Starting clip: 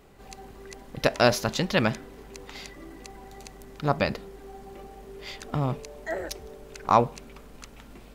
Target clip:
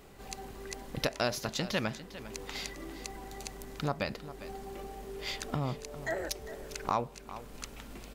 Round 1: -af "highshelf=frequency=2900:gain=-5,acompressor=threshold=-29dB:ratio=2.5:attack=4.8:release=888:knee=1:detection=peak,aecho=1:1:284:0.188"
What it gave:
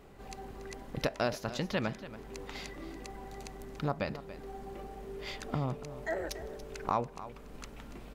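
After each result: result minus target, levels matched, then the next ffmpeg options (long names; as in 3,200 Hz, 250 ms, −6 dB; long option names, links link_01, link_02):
8,000 Hz band −6.5 dB; echo 118 ms early
-af "highshelf=frequency=2900:gain=4.5,acompressor=threshold=-29dB:ratio=2.5:attack=4.8:release=888:knee=1:detection=peak,aecho=1:1:284:0.188"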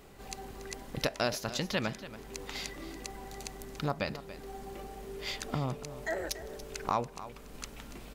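echo 118 ms early
-af "highshelf=frequency=2900:gain=4.5,acompressor=threshold=-29dB:ratio=2.5:attack=4.8:release=888:knee=1:detection=peak,aecho=1:1:402:0.188"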